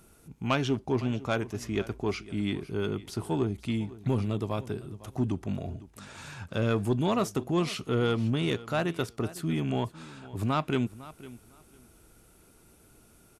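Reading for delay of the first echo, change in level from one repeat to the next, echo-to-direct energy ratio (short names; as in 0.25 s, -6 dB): 0.505 s, -14.5 dB, -18.0 dB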